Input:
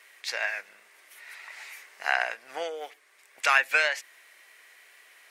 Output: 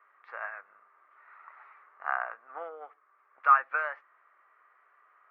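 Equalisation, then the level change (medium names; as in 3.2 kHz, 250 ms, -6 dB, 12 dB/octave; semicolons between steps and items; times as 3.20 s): high-pass 300 Hz 6 dB/octave; four-pole ladder low-pass 1.3 kHz, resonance 80%; +3.5 dB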